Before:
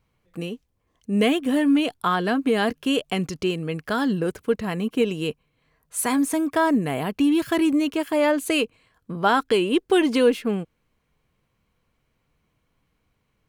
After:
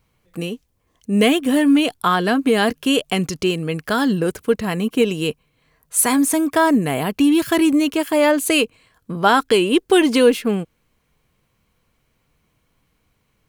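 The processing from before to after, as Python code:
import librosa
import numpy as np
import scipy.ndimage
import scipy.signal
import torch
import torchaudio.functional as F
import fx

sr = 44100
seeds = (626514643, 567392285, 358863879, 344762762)

y = fx.high_shelf(x, sr, hz=4900.0, db=6.5)
y = F.gain(torch.from_numpy(y), 4.5).numpy()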